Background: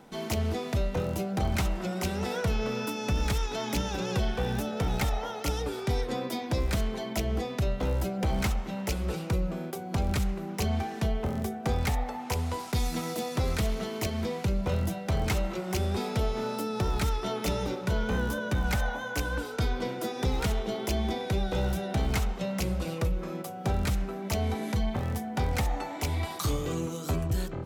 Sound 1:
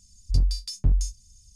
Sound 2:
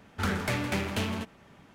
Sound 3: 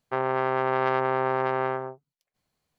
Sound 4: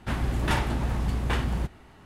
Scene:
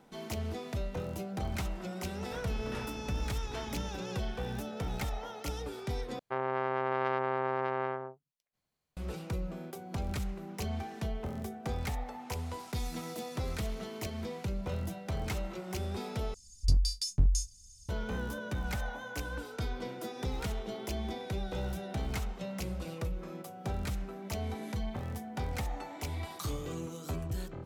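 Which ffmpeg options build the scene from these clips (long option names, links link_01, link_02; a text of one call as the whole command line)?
ffmpeg -i bed.wav -i cue0.wav -i cue1.wav -i cue2.wav -i cue3.wav -filter_complex "[0:a]volume=-7.5dB[link_01];[1:a]highshelf=frequency=3500:gain=7[link_02];[link_01]asplit=3[link_03][link_04][link_05];[link_03]atrim=end=6.194[link_06];[3:a]atrim=end=2.78,asetpts=PTS-STARTPTS,volume=-7dB[link_07];[link_04]atrim=start=8.966:end=16.344[link_08];[link_02]atrim=end=1.55,asetpts=PTS-STARTPTS,volume=-4.5dB[link_09];[link_05]atrim=start=17.886[link_10];[4:a]atrim=end=2.05,asetpts=PTS-STARTPTS,volume=-17.5dB,afade=type=in:duration=0.004:curve=hsin,afade=type=out:start_time=2.046:duration=0.004:curve=hsin,adelay=2240[link_11];[link_06][link_07]acrossfade=duration=0.004:curve1=hsin:curve2=hsin[link_12];[link_12][link_08]acrossfade=duration=0.004:curve1=hsin:curve2=hsin[link_13];[link_13][link_09]acrossfade=duration=0.004:curve1=hsin:curve2=hsin[link_14];[link_14][link_10]acrossfade=duration=0.004:curve1=hsin:curve2=hsin[link_15];[link_15][link_11]amix=inputs=2:normalize=0" out.wav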